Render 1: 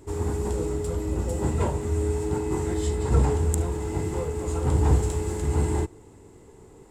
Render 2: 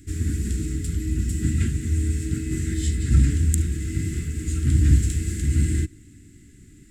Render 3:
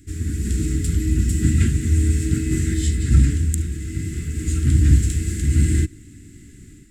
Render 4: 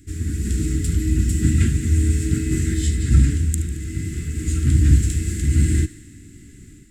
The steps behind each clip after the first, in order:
elliptic band-stop 290–1700 Hz, stop band 50 dB; trim +4.5 dB
level rider gain up to 7 dB; trim -1 dB
thinning echo 74 ms, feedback 69%, level -16 dB

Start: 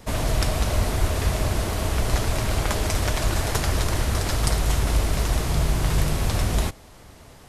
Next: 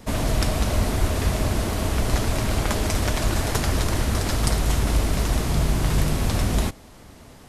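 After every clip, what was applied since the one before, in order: peaking EQ 240 Hz +5.5 dB 0.83 oct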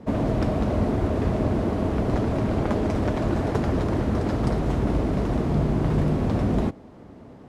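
band-pass filter 290 Hz, Q 0.64; trim +5 dB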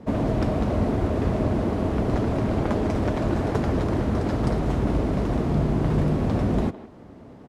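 speakerphone echo 160 ms, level -14 dB

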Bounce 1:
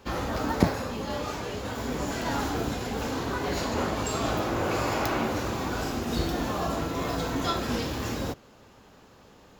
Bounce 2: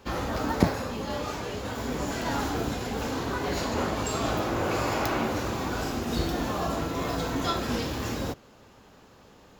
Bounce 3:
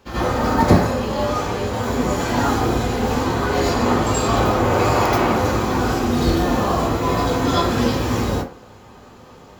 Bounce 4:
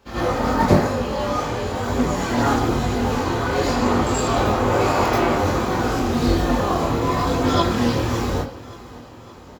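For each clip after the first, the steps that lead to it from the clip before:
no audible change
reverberation RT60 0.40 s, pre-delay 72 ms, DRR -10 dB; trim -1 dB
chorus voices 2, 1 Hz, delay 23 ms, depth 3 ms; feedback delay 568 ms, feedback 52%, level -19 dB; loudspeaker Doppler distortion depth 0.18 ms; trim +1.5 dB

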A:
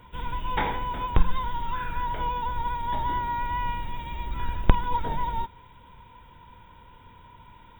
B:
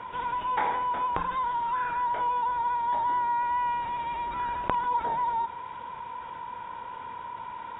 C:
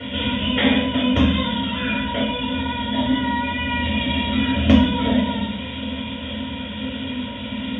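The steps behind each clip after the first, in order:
band-pass filter 960 Hz, Q 1; level flattener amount 50%
FFT filter 100 Hz 0 dB, 250 Hz +14 dB, 390 Hz -22 dB, 610 Hz +2 dB, 870 Hz -28 dB, 3.3 kHz +9 dB, 5.1 kHz -11 dB; in parallel at -5.5 dB: hard clipper -20 dBFS, distortion -17 dB; on the sum: reverberation RT60 0.50 s, pre-delay 3 ms, DRR -7.5 dB; trim -1 dB

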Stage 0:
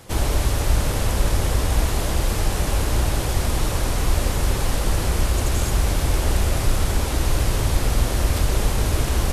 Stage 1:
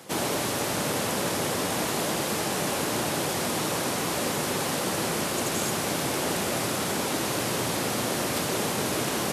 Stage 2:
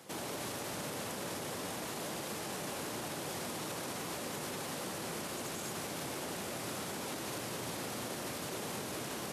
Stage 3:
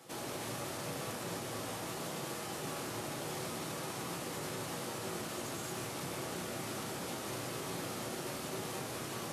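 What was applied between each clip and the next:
high-pass 160 Hz 24 dB/octave
peak limiter -23 dBFS, peak gain reduction 7.5 dB; trim -8 dB
simulated room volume 56 m³, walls mixed, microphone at 0.62 m; trim -3.5 dB

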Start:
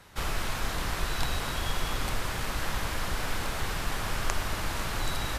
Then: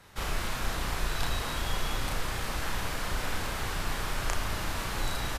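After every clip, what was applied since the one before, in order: doubling 34 ms -3.5 dB; trim -2.5 dB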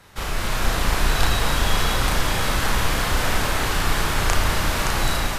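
level rider gain up to 5 dB; two-band feedback delay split 740 Hz, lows 209 ms, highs 569 ms, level -6 dB; trim +5 dB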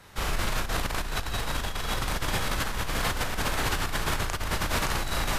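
compressor with a negative ratio -23 dBFS, ratio -1; trim -5 dB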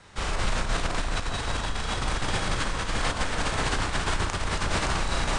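steep low-pass 9.6 kHz 96 dB/octave; echo whose repeats swap between lows and highs 138 ms, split 1.3 kHz, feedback 61%, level -3.5 dB

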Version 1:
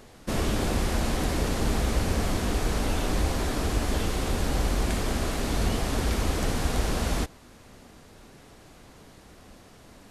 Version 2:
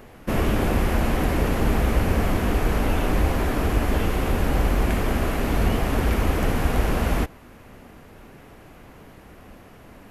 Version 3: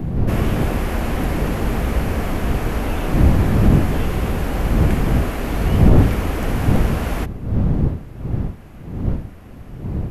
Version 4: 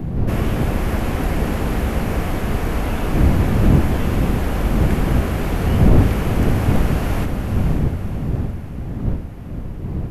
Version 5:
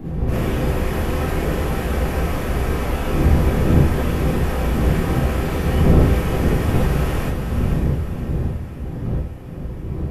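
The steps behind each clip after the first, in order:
high-order bell 5.8 kHz -10 dB; trim +5 dB
wind noise 150 Hz -18 dBFS; loudness maximiser +1 dB; trim -1 dB
echo that smears into a reverb 530 ms, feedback 44%, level -6 dB; trim -1 dB
gated-style reverb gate 80 ms rising, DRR -7 dB; trim -7.5 dB

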